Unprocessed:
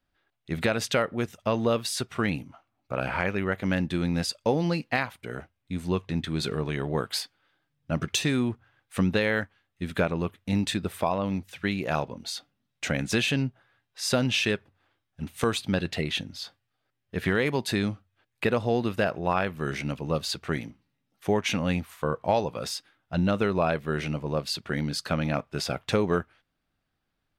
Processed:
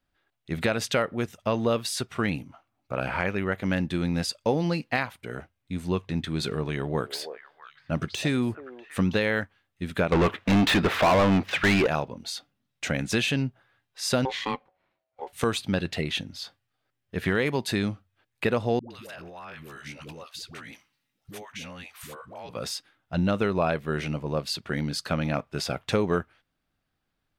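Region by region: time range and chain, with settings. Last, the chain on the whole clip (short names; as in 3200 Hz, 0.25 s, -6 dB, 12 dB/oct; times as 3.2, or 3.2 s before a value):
6.65–9.17 de-esser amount 65% + delay with a stepping band-pass 0.323 s, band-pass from 570 Hz, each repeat 1.4 oct, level -7.5 dB
10.12–11.87 median filter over 5 samples + high shelf 4600 Hz -8 dB + overdrive pedal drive 31 dB, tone 3400 Hz, clips at -12.5 dBFS
14.25–15.33 hard clip -15.5 dBFS + high shelf 3600 Hz -12 dB + ring modulator 650 Hz
18.79–22.49 tilt shelf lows -6.5 dB, about 930 Hz + compressor 5:1, threshold -38 dBFS + dispersion highs, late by 0.116 s, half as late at 460 Hz
whole clip: dry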